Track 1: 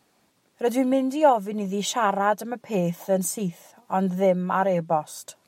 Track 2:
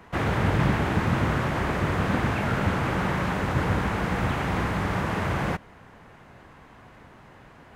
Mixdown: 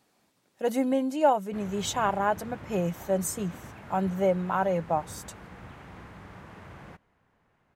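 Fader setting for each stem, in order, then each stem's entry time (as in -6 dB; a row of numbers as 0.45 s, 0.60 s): -4.0 dB, -20.0 dB; 0.00 s, 1.40 s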